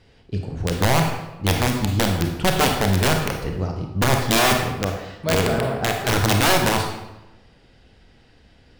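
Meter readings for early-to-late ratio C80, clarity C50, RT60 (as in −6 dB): 7.0 dB, 4.5 dB, 1.0 s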